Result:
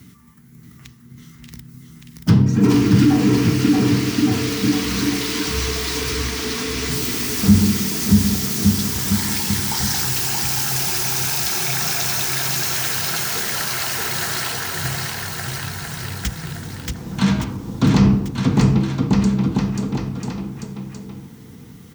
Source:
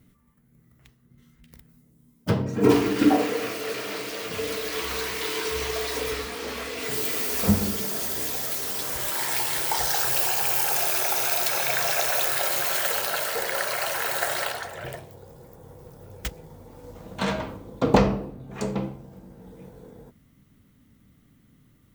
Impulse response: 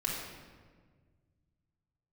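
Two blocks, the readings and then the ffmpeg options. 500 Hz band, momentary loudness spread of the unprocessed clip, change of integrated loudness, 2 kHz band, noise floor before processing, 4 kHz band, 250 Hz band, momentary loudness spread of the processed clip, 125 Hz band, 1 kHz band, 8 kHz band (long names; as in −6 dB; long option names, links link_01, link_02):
−0.5 dB, 12 LU, +5.5 dB, +3.5 dB, −60 dBFS, +7.0 dB, +11.0 dB, 13 LU, +14.5 dB, +0.5 dB, +6.5 dB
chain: -filter_complex "[0:a]aecho=1:1:630|1166|1621|2008|2336:0.631|0.398|0.251|0.158|0.1,apsyclip=16.5dB,equalizer=frequency=560:width=2.5:gain=-15,acrossover=split=270[link_01][link_02];[link_02]acompressor=threshold=-48dB:ratio=1.5[link_03];[link_01][link_03]amix=inputs=2:normalize=0,highpass=81,equalizer=frequency=5600:width=1.4:gain=6.5,volume=-1dB"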